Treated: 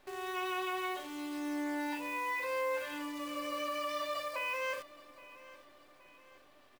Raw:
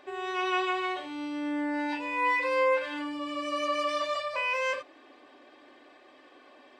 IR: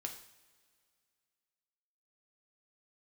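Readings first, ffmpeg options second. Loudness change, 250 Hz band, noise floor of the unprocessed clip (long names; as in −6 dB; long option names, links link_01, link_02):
−7.0 dB, −5.5 dB, −56 dBFS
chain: -af "alimiter=limit=-23dB:level=0:latency=1,acrusher=bits=8:dc=4:mix=0:aa=0.000001,aecho=1:1:821|1642|2463|3284:0.112|0.0527|0.0248|0.0116,volume=-5.5dB"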